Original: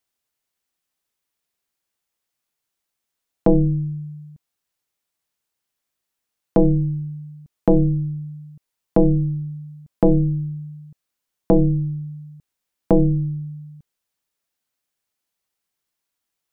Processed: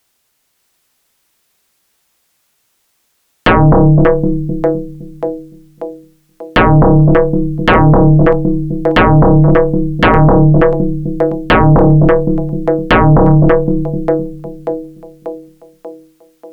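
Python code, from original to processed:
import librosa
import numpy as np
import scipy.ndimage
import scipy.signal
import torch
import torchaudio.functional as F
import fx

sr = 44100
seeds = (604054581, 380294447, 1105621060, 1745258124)

y = fx.echo_split(x, sr, split_hz=400.0, low_ms=257, high_ms=588, feedback_pct=52, wet_db=-4.5)
y = fx.fold_sine(y, sr, drive_db=11, ceiling_db=-7.0)
y = y * 10.0 ** (3.5 / 20.0)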